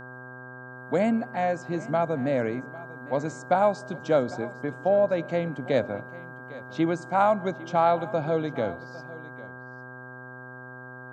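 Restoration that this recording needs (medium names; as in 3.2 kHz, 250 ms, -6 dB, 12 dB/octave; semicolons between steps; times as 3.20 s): de-hum 126.6 Hz, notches 11; band-stop 1.6 kHz, Q 30; inverse comb 802 ms -18.5 dB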